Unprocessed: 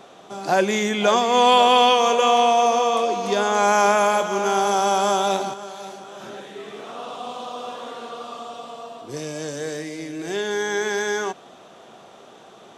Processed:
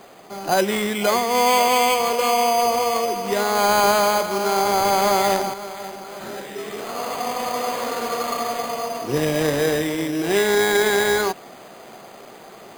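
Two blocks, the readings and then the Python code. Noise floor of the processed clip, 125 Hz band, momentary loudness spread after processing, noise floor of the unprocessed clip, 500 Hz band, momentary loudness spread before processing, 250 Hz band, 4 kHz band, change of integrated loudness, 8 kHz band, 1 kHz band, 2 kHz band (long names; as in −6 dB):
−43 dBFS, +5.0 dB, 15 LU, −47 dBFS, +1.0 dB, 20 LU, +2.5 dB, −0.5 dB, −0.5 dB, +3.5 dB, −0.5 dB, +2.5 dB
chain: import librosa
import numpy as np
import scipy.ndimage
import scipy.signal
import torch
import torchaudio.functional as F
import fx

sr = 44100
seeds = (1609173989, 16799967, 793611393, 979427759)

y = fx.rider(x, sr, range_db=10, speed_s=2.0)
y = np.repeat(y[::8], 8)[:len(y)]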